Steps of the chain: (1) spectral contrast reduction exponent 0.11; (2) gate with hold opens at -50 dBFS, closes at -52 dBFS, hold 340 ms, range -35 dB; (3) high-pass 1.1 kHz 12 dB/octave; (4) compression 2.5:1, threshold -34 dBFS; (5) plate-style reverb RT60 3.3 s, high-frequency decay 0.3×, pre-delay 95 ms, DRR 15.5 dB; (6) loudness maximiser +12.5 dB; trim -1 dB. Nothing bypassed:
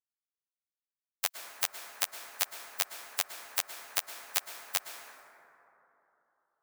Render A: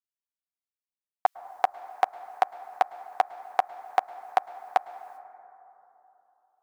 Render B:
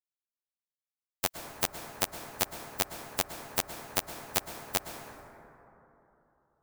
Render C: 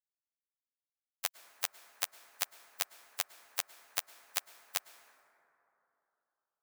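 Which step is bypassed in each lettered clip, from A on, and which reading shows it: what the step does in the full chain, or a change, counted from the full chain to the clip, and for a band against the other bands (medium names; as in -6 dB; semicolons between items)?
1, 4 kHz band -26.0 dB; 3, 250 Hz band +18.5 dB; 6, crest factor change +3.5 dB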